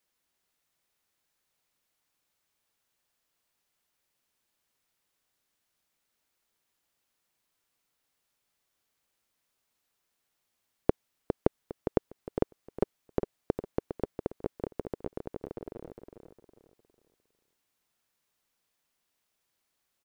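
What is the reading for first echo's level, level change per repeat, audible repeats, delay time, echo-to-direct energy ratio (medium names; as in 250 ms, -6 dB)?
-8.0 dB, -9.5 dB, 3, 407 ms, -7.5 dB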